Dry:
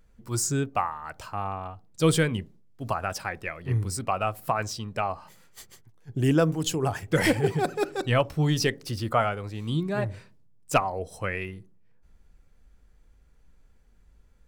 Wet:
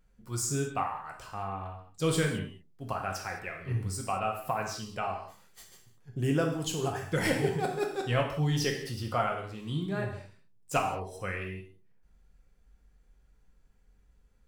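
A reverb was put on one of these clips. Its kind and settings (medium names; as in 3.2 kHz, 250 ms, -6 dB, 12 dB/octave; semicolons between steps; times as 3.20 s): gated-style reverb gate 240 ms falling, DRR 1 dB; trim -7 dB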